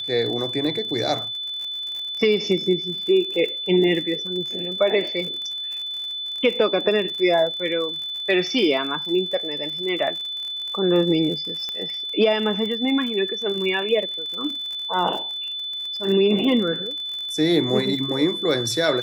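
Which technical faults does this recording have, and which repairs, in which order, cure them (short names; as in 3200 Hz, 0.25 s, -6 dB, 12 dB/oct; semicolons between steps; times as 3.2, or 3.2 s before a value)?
crackle 51/s -30 dBFS
tone 3500 Hz -27 dBFS
11.69 pop -16 dBFS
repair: de-click; notch 3500 Hz, Q 30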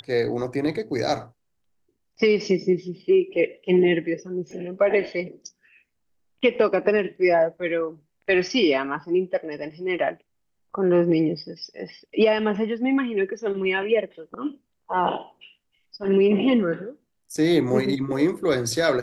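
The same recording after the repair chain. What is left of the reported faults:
none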